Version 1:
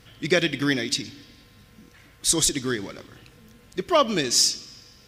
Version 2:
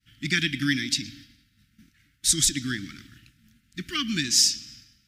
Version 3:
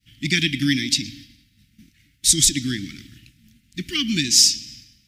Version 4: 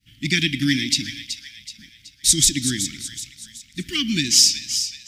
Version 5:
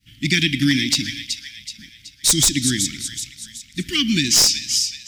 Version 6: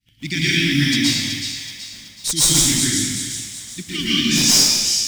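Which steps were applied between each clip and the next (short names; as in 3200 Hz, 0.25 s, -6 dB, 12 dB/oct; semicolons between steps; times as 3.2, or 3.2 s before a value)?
expander -43 dBFS; inverse Chebyshev band-stop 430–990 Hz, stop band 40 dB
band shelf 990 Hz -12.5 dB; gain +5.5 dB
thin delay 0.376 s, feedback 44%, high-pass 1800 Hz, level -9.5 dB
one-sided fold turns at -9.5 dBFS; in parallel at +0.5 dB: limiter -12 dBFS, peak gain reduction 10.5 dB; on the sum: gain -2.5 dB
in parallel at -3.5 dB: requantised 6-bit, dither none; on the sum: plate-style reverb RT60 1.3 s, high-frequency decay 0.9×, pre-delay 0.105 s, DRR -9 dB; gain -11.5 dB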